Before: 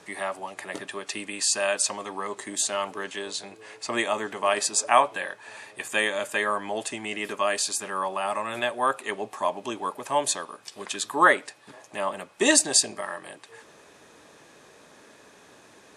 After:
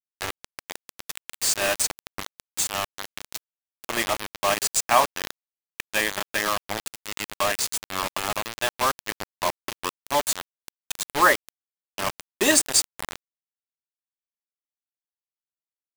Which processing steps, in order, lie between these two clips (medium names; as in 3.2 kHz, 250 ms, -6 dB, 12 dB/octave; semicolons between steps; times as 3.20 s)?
de-hum 82.04 Hz, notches 5; bit crusher 4-bit